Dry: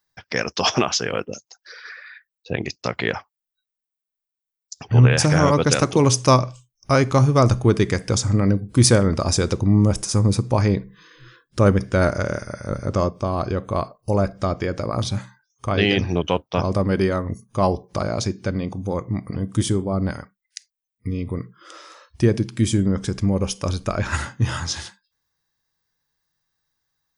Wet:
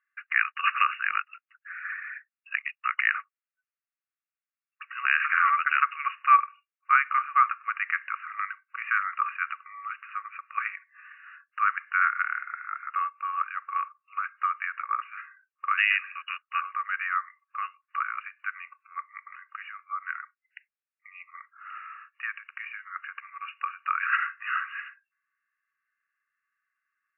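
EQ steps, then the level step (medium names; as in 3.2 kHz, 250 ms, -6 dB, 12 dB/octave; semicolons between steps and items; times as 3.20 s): brick-wall FIR band-pass 1.1–2.9 kHz; distance through air 360 m; +6.5 dB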